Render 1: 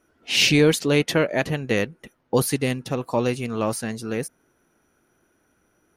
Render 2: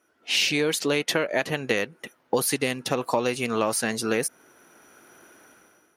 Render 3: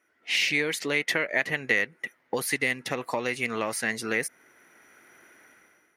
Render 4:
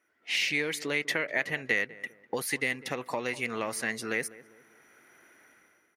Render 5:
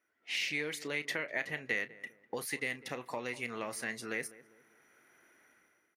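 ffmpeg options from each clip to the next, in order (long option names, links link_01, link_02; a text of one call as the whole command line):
ffmpeg -i in.wav -af "dynaudnorm=framelen=160:gausssize=7:maxgain=16dB,highpass=frequency=500:poles=1,acompressor=threshold=-20dB:ratio=6" out.wav
ffmpeg -i in.wav -af "equalizer=frequency=2000:width=2.9:gain=14,volume=-6dB" out.wav
ffmpeg -i in.wav -filter_complex "[0:a]asplit=2[link_01][link_02];[link_02]adelay=199,lowpass=frequency=1100:poles=1,volume=-16.5dB,asplit=2[link_03][link_04];[link_04]adelay=199,lowpass=frequency=1100:poles=1,volume=0.43,asplit=2[link_05][link_06];[link_06]adelay=199,lowpass=frequency=1100:poles=1,volume=0.43,asplit=2[link_07][link_08];[link_08]adelay=199,lowpass=frequency=1100:poles=1,volume=0.43[link_09];[link_01][link_03][link_05][link_07][link_09]amix=inputs=5:normalize=0,volume=-3.5dB" out.wav
ffmpeg -i in.wav -filter_complex "[0:a]asplit=2[link_01][link_02];[link_02]adelay=33,volume=-14dB[link_03];[link_01][link_03]amix=inputs=2:normalize=0,volume=-6.5dB" out.wav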